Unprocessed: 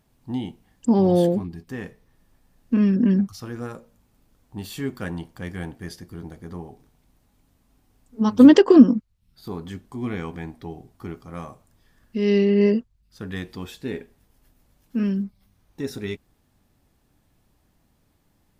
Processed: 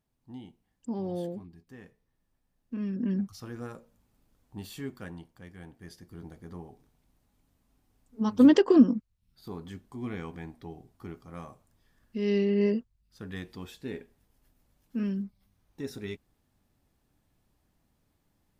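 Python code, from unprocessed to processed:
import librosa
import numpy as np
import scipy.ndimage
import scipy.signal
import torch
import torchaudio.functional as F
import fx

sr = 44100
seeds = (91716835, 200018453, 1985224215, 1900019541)

y = fx.gain(x, sr, db=fx.line((2.74, -16.0), (3.37, -7.0), (4.62, -7.0), (5.53, -16.0), (6.22, -7.5)))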